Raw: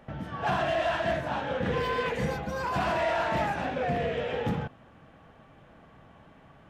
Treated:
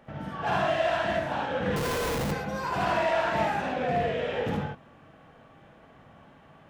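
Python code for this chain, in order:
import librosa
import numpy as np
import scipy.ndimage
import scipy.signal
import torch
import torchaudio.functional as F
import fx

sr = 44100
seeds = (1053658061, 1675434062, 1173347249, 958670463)

y = fx.low_shelf(x, sr, hz=80.0, db=-6.5)
y = fx.room_early_taps(y, sr, ms=(54, 74), db=(-3.0, -3.5))
y = fx.schmitt(y, sr, flips_db=-29.0, at=(1.76, 2.32))
y = y * librosa.db_to_amplitude(-1.5)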